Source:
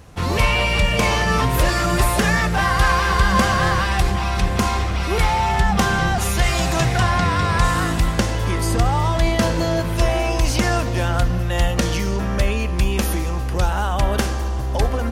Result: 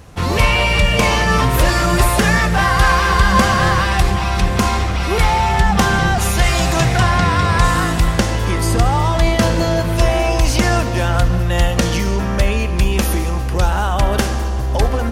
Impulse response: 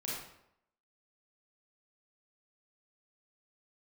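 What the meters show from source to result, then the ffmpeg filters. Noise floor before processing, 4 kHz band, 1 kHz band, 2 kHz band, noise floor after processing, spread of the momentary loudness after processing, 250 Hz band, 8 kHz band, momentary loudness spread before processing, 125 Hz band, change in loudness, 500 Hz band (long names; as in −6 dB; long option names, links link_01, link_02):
−22 dBFS, +3.5 dB, +3.5 dB, +3.5 dB, −19 dBFS, 5 LU, +3.5 dB, +3.5 dB, 5 LU, +3.5 dB, +3.5 dB, +3.5 dB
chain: -filter_complex "[0:a]asplit=2[link_01][link_02];[1:a]atrim=start_sample=2205,asetrate=24255,aresample=44100,adelay=74[link_03];[link_02][link_03]afir=irnorm=-1:irlink=0,volume=-21dB[link_04];[link_01][link_04]amix=inputs=2:normalize=0,volume=3.5dB"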